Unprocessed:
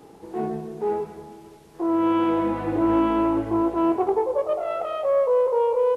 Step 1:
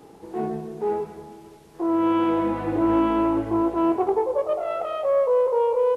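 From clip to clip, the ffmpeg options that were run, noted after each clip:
-af anull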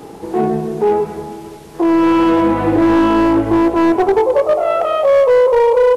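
-filter_complex "[0:a]asplit=2[a][b];[b]acompressor=threshold=-28dB:ratio=6,volume=-0.5dB[c];[a][c]amix=inputs=2:normalize=0,asoftclip=type=hard:threshold=-15dB,volume=8dB"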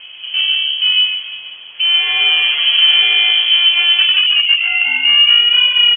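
-af "aecho=1:1:144:0.668,lowpass=f=2.9k:t=q:w=0.5098,lowpass=f=2.9k:t=q:w=0.6013,lowpass=f=2.9k:t=q:w=0.9,lowpass=f=2.9k:t=q:w=2.563,afreqshift=-3400,volume=-1dB"

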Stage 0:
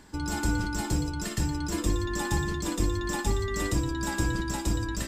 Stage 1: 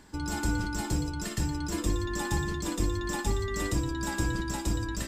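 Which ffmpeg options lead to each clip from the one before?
-af "acontrast=21,volume=-6.5dB"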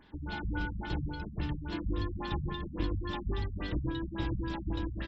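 -af "highshelf=f=4.9k:t=q:w=3:g=-13,aecho=1:1:121:0.596,afftfilt=real='re*lt(b*sr/1024,210*pow(7700/210,0.5+0.5*sin(2*PI*3.6*pts/sr)))':imag='im*lt(b*sr/1024,210*pow(7700/210,0.5+0.5*sin(2*PI*3.6*pts/sr)))':win_size=1024:overlap=0.75,volume=-5dB"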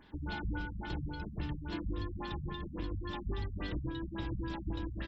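-af "alimiter=level_in=4dB:limit=-24dB:level=0:latency=1:release=472,volume=-4dB"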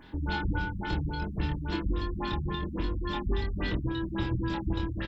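-filter_complex "[0:a]asplit=2[a][b];[b]adelay=25,volume=-4dB[c];[a][c]amix=inputs=2:normalize=0,volume=6.5dB"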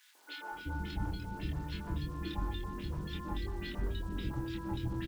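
-filter_complex "[0:a]acrusher=bits=8:mix=0:aa=0.000001,acrossover=split=430|1500[a][b][c];[b]adelay=150[d];[a]adelay=520[e];[e][d][c]amix=inputs=3:normalize=0,volume=-6dB"

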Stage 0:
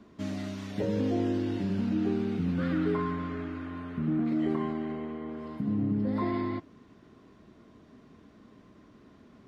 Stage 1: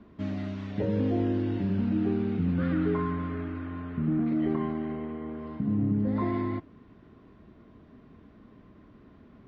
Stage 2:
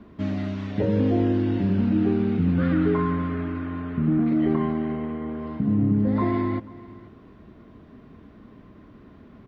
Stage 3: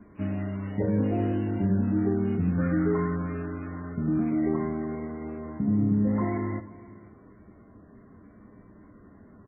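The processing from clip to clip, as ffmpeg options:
-af "lowpass=3.1k,lowshelf=f=100:g=9.5"
-af "aecho=1:1:489:0.0944,volume=5.5dB"
-af "aecho=1:1:10|63:0.316|0.188,volume=-4dB" -ar 8000 -c:a libmp3lame -b:a 8k

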